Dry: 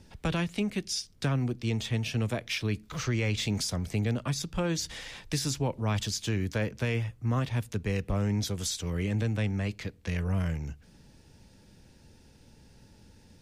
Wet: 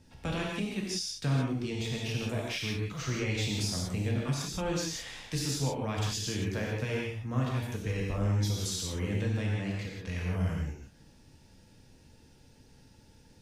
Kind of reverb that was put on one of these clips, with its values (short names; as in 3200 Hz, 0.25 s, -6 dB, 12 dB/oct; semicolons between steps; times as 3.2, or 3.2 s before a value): non-linear reverb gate 0.2 s flat, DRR -3 dB; gain -6 dB